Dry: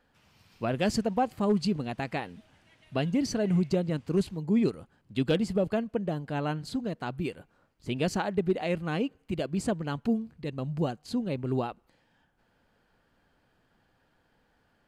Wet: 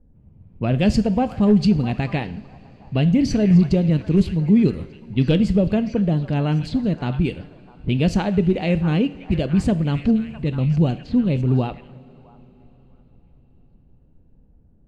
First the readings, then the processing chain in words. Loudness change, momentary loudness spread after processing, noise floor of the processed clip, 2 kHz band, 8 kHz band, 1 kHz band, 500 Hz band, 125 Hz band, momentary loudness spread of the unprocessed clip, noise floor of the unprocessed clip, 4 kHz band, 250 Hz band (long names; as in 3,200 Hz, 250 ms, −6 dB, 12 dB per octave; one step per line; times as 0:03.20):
+10.5 dB, 9 LU, −53 dBFS, +5.5 dB, can't be measured, +3.5 dB, +5.5 dB, +14.0 dB, 9 LU, −70 dBFS, +6.0 dB, +11.0 dB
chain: RIAA equalisation playback
in parallel at −1.5 dB: brickwall limiter −20 dBFS, peak gain reduction 11 dB
on the sum: high shelf with overshoot 1,900 Hz +6.5 dB, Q 1.5
on a send: echo through a band-pass that steps 654 ms, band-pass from 1,200 Hz, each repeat 0.7 octaves, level −8 dB
on the sum: low-pass that shuts in the quiet parts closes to 370 Hz, open at −18.5 dBFS
coupled-rooms reverb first 0.48 s, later 4.9 s, from −19 dB, DRR 12 dB